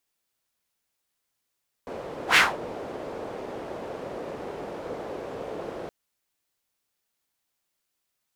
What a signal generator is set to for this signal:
pass-by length 4.02 s, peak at 0:00.49, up 0.10 s, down 0.22 s, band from 500 Hz, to 2,200 Hz, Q 1.9, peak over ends 20 dB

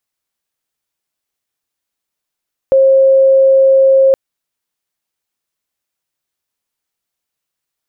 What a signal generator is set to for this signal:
tone sine 536 Hz −5 dBFS 1.42 s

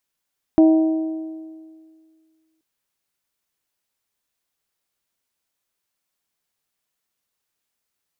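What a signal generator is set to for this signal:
struck metal bell, length 2.03 s, lowest mode 319 Hz, modes 4, decay 1.99 s, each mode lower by 10 dB, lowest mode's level −8 dB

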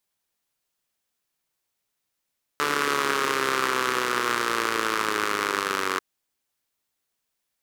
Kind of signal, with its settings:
pulse-train model of a four-cylinder engine, changing speed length 3.39 s, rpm 4,400, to 2,800, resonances 410/1,200 Hz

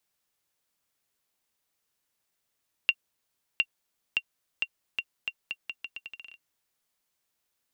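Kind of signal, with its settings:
bouncing ball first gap 0.71 s, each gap 0.8, 2,760 Hz, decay 55 ms −10 dBFS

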